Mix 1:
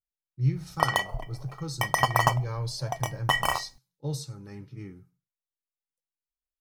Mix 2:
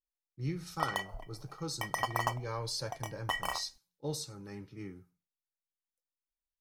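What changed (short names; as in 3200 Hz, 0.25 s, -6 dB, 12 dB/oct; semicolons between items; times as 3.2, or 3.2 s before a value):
background -9.5 dB; master: add bell 130 Hz -14.5 dB 0.5 oct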